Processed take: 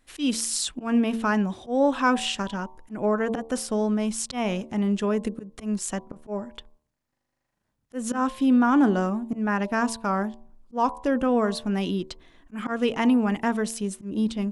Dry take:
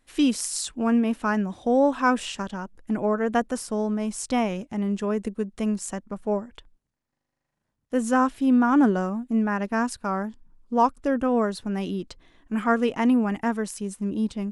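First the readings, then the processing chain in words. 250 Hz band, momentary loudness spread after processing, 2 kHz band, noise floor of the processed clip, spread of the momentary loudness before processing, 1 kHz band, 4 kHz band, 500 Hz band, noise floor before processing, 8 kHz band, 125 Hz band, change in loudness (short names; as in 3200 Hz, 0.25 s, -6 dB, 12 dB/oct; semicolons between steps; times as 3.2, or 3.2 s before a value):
-0.5 dB, 13 LU, +0.5 dB, -79 dBFS, 11 LU, -1.5 dB, +4.0 dB, -1.0 dB, -81 dBFS, +2.0 dB, n/a, -0.5 dB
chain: auto swell 0.166 s; de-hum 75.5 Hz, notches 15; in parallel at -1.5 dB: limiter -19.5 dBFS, peak gain reduction 10.5 dB; on the sum: dynamic EQ 3400 Hz, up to +5 dB, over -48 dBFS, Q 1.7; gain -3 dB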